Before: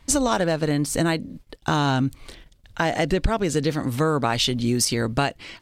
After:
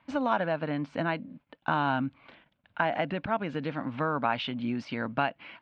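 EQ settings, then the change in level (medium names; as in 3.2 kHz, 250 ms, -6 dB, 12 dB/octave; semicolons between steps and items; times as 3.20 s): cabinet simulation 290–2300 Hz, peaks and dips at 350 Hz -3 dB, 500 Hz -3 dB, 760 Hz -3 dB, 1.2 kHz -5 dB, 1.9 kHz -9 dB; peaking EQ 400 Hz -13 dB 0.78 oct; +1.5 dB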